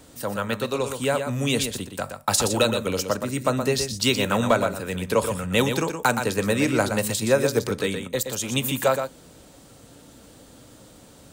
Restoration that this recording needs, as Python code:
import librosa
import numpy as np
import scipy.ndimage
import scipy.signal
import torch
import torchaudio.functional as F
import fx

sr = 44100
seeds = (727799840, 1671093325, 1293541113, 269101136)

y = fx.fix_declip(x, sr, threshold_db=-9.0)
y = fx.fix_echo_inverse(y, sr, delay_ms=121, level_db=-7.5)